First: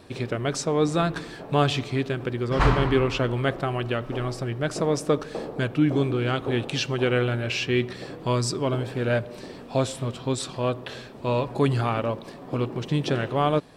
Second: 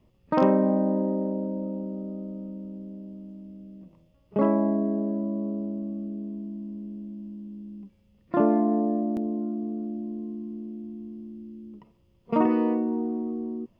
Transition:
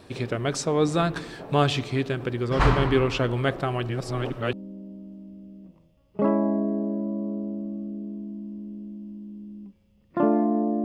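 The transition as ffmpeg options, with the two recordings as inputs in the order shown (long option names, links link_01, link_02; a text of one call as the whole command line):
ffmpeg -i cue0.wav -i cue1.wav -filter_complex "[0:a]apad=whole_dur=10.84,atrim=end=10.84,asplit=2[link_01][link_02];[link_01]atrim=end=3.892[link_03];[link_02]atrim=start=3.888:end=4.532,asetpts=PTS-STARTPTS,areverse[link_04];[1:a]atrim=start=2.698:end=9.01[link_05];[link_03][link_04]acrossfade=duration=0.004:curve1=hsin:curve2=hsin[link_06];[link_06][link_05]acrossfade=duration=0.004:curve1=hsin:curve2=hsin" out.wav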